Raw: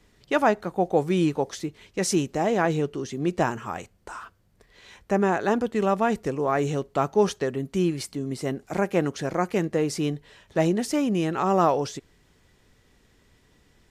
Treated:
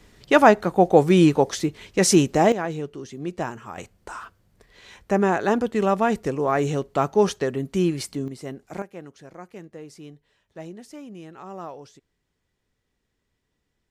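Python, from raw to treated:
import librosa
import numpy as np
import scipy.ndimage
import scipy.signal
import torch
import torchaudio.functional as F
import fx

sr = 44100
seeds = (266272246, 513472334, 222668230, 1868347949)

y = fx.gain(x, sr, db=fx.steps((0.0, 7.0), (2.52, -5.0), (3.78, 2.0), (8.28, -6.0), (8.82, -16.0)))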